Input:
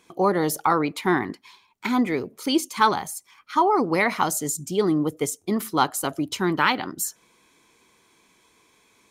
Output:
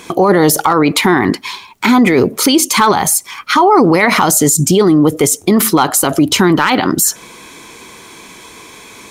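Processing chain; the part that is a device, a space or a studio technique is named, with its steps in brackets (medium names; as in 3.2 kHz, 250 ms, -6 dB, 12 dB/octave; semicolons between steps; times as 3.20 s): loud club master (compression 2:1, threshold -24 dBFS, peak gain reduction 6.5 dB; hard clipper -14.5 dBFS, distortion -27 dB; loudness maximiser +25.5 dB); trim -1 dB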